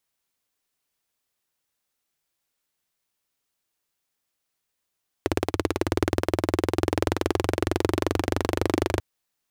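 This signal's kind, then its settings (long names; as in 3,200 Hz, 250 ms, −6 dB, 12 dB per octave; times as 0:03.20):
pulse-train model of a single-cylinder engine, changing speed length 3.74 s, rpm 2,100, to 3,000, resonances 92/330 Hz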